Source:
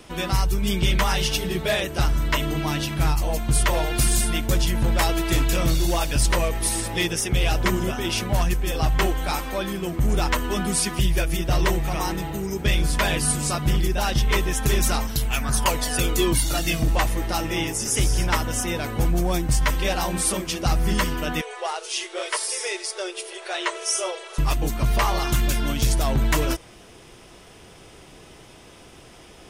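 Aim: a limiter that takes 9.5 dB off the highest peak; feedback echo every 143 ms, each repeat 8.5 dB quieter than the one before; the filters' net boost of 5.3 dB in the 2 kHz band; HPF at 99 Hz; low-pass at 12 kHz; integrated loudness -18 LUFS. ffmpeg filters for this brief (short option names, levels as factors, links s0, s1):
-af "highpass=99,lowpass=12000,equalizer=f=2000:t=o:g=6.5,alimiter=limit=0.188:level=0:latency=1,aecho=1:1:143|286|429|572:0.376|0.143|0.0543|0.0206,volume=2.24"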